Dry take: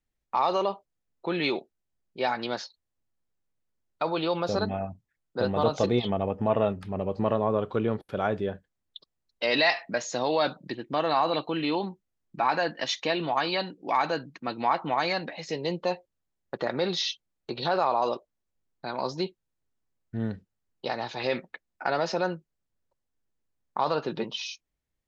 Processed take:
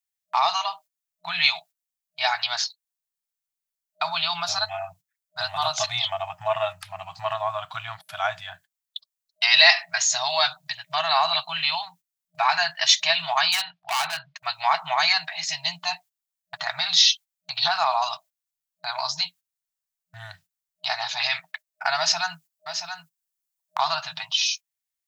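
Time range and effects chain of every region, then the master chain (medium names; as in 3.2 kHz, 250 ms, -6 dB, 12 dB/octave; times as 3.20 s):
13.52–14.36 s: low-pass 3.9 kHz 24 dB/octave + overload inside the chain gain 26 dB
21.98–23.82 s: treble shelf 4.8 kHz +4.5 dB + delay 678 ms -8.5 dB
whole clip: gate -46 dBFS, range -13 dB; FFT band-reject 180–620 Hz; tilt EQ +4.5 dB/octave; trim +4 dB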